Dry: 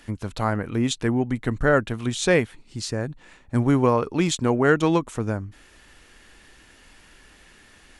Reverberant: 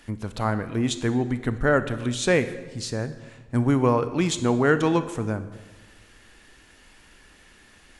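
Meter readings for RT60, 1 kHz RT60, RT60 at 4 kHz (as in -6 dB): 1.3 s, 1.2 s, 0.95 s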